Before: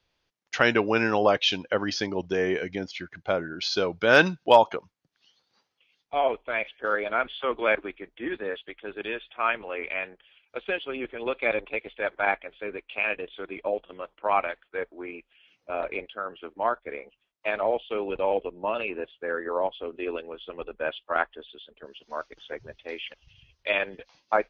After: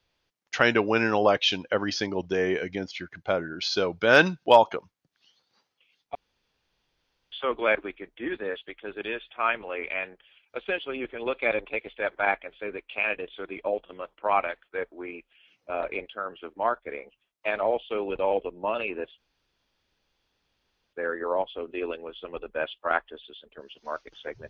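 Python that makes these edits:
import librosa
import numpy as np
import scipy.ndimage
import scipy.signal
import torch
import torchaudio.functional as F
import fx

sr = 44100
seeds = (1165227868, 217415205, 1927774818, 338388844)

y = fx.edit(x, sr, fx.room_tone_fill(start_s=6.15, length_s=1.17),
    fx.insert_room_tone(at_s=19.18, length_s=1.75), tone=tone)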